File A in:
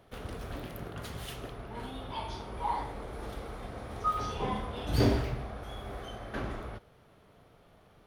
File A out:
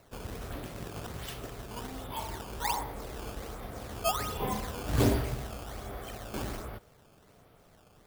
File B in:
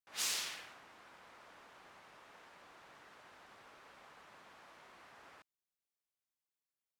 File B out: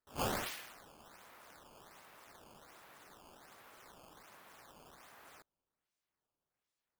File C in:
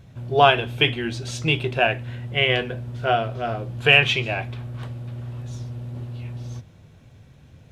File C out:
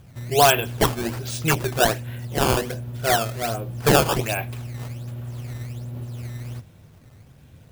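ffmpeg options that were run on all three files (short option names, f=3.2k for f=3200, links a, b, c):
-af "acrusher=samples=13:mix=1:aa=0.000001:lfo=1:lforange=20.8:lforate=1.3,asoftclip=type=hard:threshold=-8.5dB,highshelf=f=7.5k:g=5.5"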